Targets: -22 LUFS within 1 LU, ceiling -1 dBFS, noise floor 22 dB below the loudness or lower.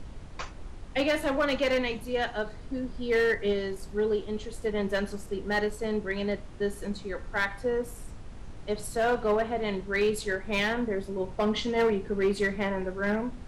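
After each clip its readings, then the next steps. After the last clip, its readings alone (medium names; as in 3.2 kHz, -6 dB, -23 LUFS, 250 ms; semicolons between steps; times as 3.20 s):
clipped samples 1.2%; clipping level -19.5 dBFS; noise floor -43 dBFS; noise floor target -52 dBFS; loudness -29.5 LUFS; peak level -19.5 dBFS; loudness target -22.0 LUFS
-> clip repair -19.5 dBFS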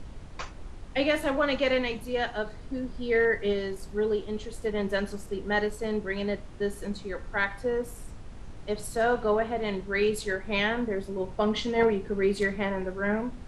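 clipped samples 0.0%; noise floor -43 dBFS; noise floor target -51 dBFS
-> noise print and reduce 8 dB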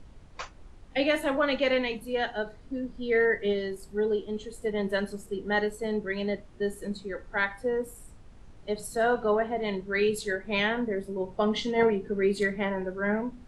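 noise floor -50 dBFS; noise floor target -51 dBFS
-> noise print and reduce 6 dB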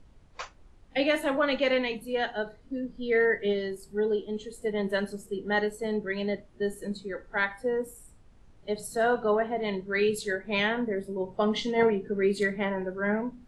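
noise floor -56 dBFS; loudness -29.0 LUFS; peak level -11.0 dBFS; loudness target -22.0 LUFS
-> trim +7 dB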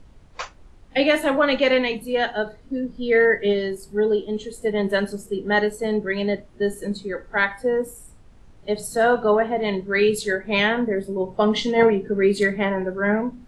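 loudness -22.0 LUFS; peak level -4.0 dBFS; noise floor -49 dBFS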